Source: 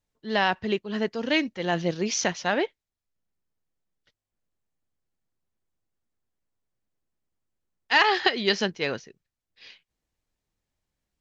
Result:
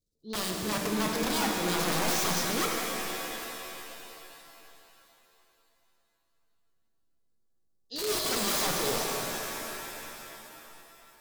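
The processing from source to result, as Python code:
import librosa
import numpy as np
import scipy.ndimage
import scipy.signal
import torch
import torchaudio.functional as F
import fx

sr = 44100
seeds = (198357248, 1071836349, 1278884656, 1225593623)

y = scipy.signal.sosfilt(scipy.signal.ellip(3, 1.0, 40, [480.0, 4000.0], 'bandstop', fs=sr, output='sos'), x)
y = fx.transient(y, sr, attack_db=-7, sustain_db=10)
y = (np.mod(10.0 ** (25.0 / 20.0) * y + 1.0, 2.0) - 1.0) / 10.0 ** (25.0 / 20.0)
y = fx.rev_shimmer(y, sr, seeds[0], rt60_s=3.1, semitones=7, shimmer_db=-2, drr_db=0.5)
y = y * librosa.db_to_amplitude(-2.0)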